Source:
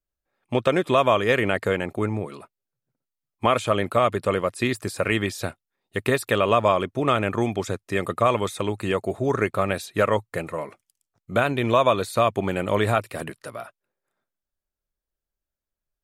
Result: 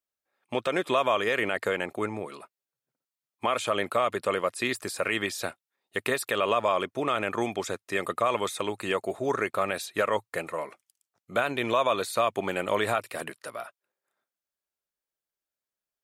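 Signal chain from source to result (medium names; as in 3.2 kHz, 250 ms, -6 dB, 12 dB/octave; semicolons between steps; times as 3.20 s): high-pass 530 Hz 6 dB/octave; peak limiter -14 dBFS, peak gain reduction 6.5 dB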